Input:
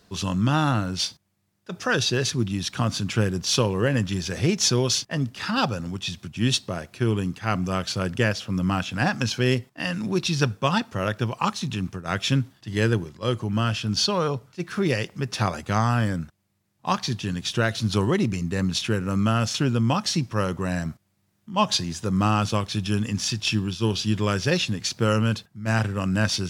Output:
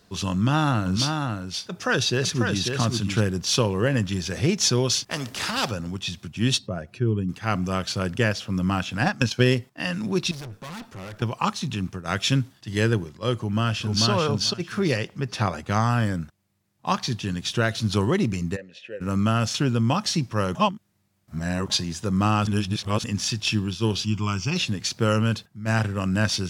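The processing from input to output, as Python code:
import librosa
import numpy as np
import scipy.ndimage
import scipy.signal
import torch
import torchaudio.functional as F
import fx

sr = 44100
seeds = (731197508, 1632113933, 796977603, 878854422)

y = fx.echo_single(x, sr, ms=544, db=-5.0, at=(0.85, 3.19), fade=0.02)
y = fx.spectral_comp(y, sr, ratio=2.0, at=(5.05, 5.7), fade=0.02)
y = fx.spec_expand(y, sr, power=1.5, at=(6.57, 7.28), fade=0.02)
y = fx.transient(y, sr, attack_db=7, sustain_db=-8, at=(9.03, 9.53))
y = fx.tube_stage(y, sr, drive_db=35.0, bias=0.4, at=(10.31, 11.22))
y = fx.peak_eq(y, sr, hz=8100.0, db=3.5, octaves=2.4, at=(12.04, 12.82))
y = fx.echo_throw(y, sr, start_s=13.36, length_s=0.73, ms=440, feedback_pct=15, wet_db=-1.5)
y = fx.high_shelf(y, sr, hz=5200.0, db=-6.0, at=(14.97, 15.7))
y = fx.vowel_filter(y, sr, vowel='e', at=(18.55, 19.0), fade=0.02)
y = fx.fixed_phaser(y, sr, hz=2600.0, stages=8, at=(24.04, 24.55), fade=0.02)
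y = fx.edit(y, sr, fx.reverse_span(start_s=20.55, length_s=1.15),
    fx.reverse_span(start_s=22.47, length_s=0.57), tone=tone)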